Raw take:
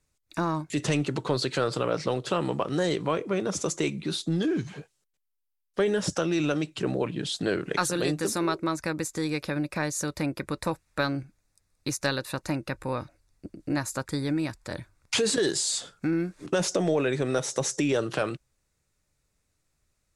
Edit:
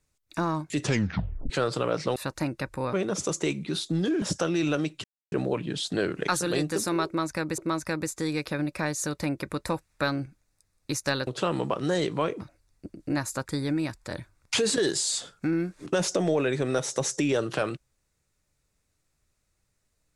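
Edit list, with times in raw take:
0:00.83: tape stop 0.67 s
0:02.16–0:03.30: swap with 0:12.24–0:13.01
0:04.59–0:05.99: remove
0:06.81: splice in silence 0.28 s
0:08.55–0:09.07: repeat, 2 plays

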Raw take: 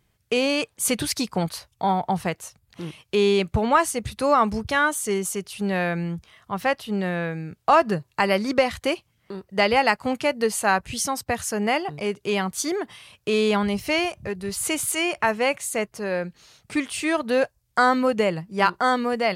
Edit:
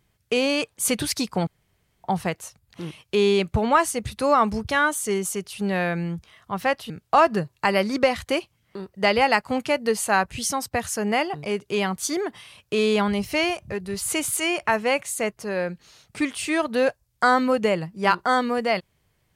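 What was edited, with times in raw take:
0:01.47–0:02.04: fill with room tone
0:06.90–0:07.45: remove

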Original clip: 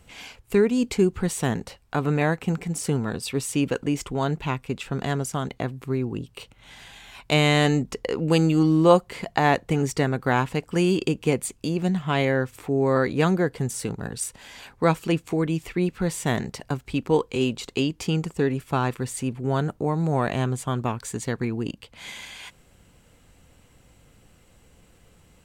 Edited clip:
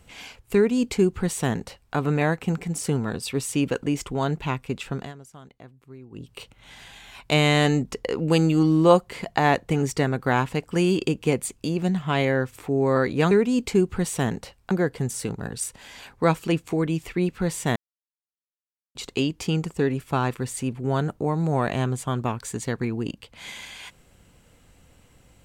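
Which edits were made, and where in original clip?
0:00.55–0:01.95: duplicate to 0:13.31
0:04.90–0:06.33: duck −18 dB, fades 0.23 s
0:16.36–0:17.55: silence

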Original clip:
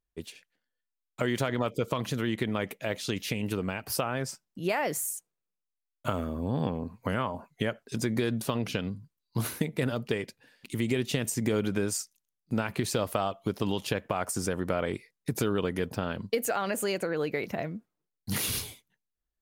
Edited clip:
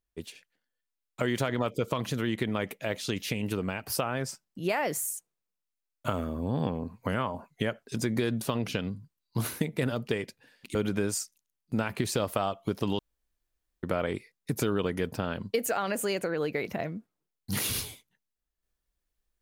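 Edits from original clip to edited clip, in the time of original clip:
0:10.75–0:11.54: remove
0:13.78–0:14.62: fill with room tone

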